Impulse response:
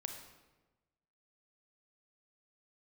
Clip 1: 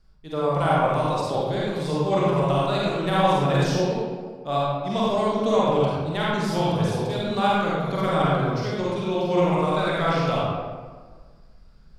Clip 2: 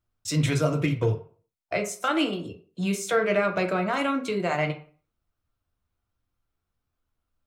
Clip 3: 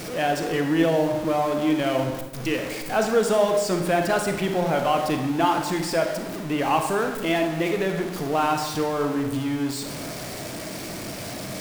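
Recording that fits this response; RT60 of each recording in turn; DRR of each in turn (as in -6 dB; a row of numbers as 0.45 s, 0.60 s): 3; 1.5 s, 0.45 s, 1.2 s; -7.0 dB, 3.5 dB, 4.0 dB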